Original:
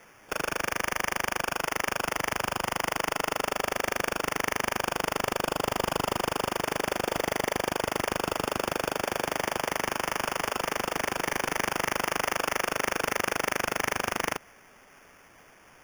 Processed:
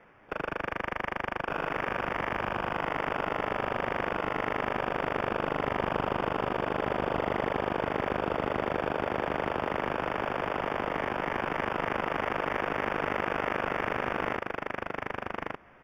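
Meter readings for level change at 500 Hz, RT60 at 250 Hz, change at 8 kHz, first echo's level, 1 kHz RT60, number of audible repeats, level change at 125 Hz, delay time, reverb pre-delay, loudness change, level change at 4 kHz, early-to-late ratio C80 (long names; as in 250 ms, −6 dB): +0.5 dB, no reverb audible, below −25 dB, −3.0 dB, no reverb audible, 1, +1.5 dB, 1,184 ms, no reverb audible, −2.0 dB, −9.0 dB, no reverb audible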